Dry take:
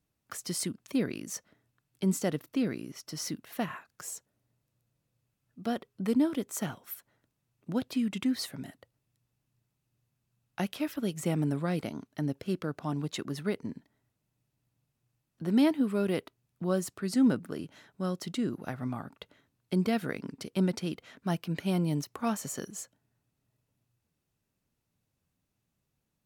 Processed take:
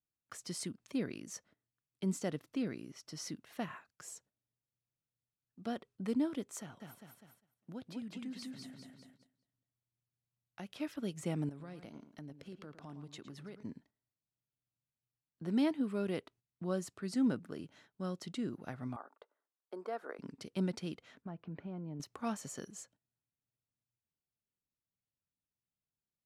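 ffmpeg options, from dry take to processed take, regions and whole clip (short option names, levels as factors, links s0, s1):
-filter_complex "[0:a]asettb=1/sr,asplit=3[s0][s1][s2];[s0]atrim=end=6.604[s3];[s1]atrim=start=6.6:end=10.76,asetpts=PTS-STARTPTS,afade=t=in:d=0.004:c=qsin,afade=t=out:st=4.156:d=0.004:c=qsin,aecho=1:1:200|400|600|800|1000:0.631|0.246|0.096|0.0374|0.0146,atrim=end_sample=183456,acompressor=threshold=0.00398:ratio=1.5:attack=3.2:release=140:knee=1:detection=peak[s4];[s2]atrim=start=10.756[s5];[s3][s4]acrossfade=d=0.004:c1=hsin:c2=qsin[s6];[s6][s5]acrossfade=d=0.004:c1=qsin:c2=hsin,asettb=1/sr,asplit=3[s7][s8][s9];[s7]atrim=end=11.494[s10];[s8]atrim=start=11.49:end=13.63,asetpts=PTS-STARTPTS,afade=t=in:d=0.004:c=qsin,afade=t=out:st=2.136:d=0.004:c=qsin,acompressor=threshold=0.00891:ratio=3:attack=3.2:release=140:knee=1:detection=peak,asplit=2[s11][s12];[s12]adelay=111,lowpass=f=3500:p=1,volume=0.299,asplit=2[s13][s14];[s14]adelay=111,lowpass=f=3500:p=1,volume=0.24,asplit=2[s15][s16];[s16]adelay=111,lowpass=f=3500:p=1,volume=0.24[s17];[s11][s13][s15][s17]amix=inputs=4:normalize=0,atrim=end_sample=94374[s18];[s9]atrim=start=13.626[s19];[s10][s18]acrossfade=d=0.004:c1=hsin:c2=qsin[s20];[s20][s19]acrossfade=d=0.004:c1=qsin:c2=hsin,asettb=1/sr,asplit=3[s21][s22][s23];[s21]atrim=end=18.964[s24];[s22]atrim=start=18.96:end=20.19,asetpts=PTS-STARTPTS,afade=t=in:d=0.004:c=qsin,afade=t=out:st=1.226:d=0.004:c=qsin,highpass=f=400:w=0.5412,highpass=f=400:w=1.3066,highshelf=f=1800:t=q:w=1.5:g=-12[s25];[s23]atrim=start=20.186[s26];[s24][s25]acrossfade=d=0.004:c1=hsin:c2=qsin[s27];[s27][s26]acrossfade=d=0.004:c1=qsin:c2=hsin,asettb=1/sr,asplit=3[s28][s29][s30];[s28]atrim=end=21.224[s31];[s29]atrim=start=21.22:end=22,asetpts=PTS-STARTPTS,afade=t=in:d=0.004:c=qsin,afade=t=out:st=0.776:d=0.004:c=qsin,lowpass=1400,acompressor=threshold=0.0224:ratio=5:attack=3.2:release=140:knee=1:detection=peak[s32];[s30]atrim=start=21.996[s33];[s31][s32]acrossfade=d=0.004:c1=hsin:c2=qsin[s34];[s34][s33]acrossfade=d=0.004:c1=qsin:c2=hsin,agate=range=0.251:threshold=0.00158:ratio=16:detection=peak,lowpass=9300,volume=0.447"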